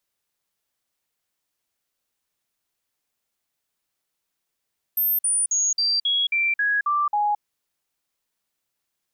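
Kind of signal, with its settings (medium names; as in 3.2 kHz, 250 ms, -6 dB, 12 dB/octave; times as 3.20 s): stepped sine 13.3 kHz down, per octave 2, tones 9, 0.22 s, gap 0.05 s -18.5 dBFS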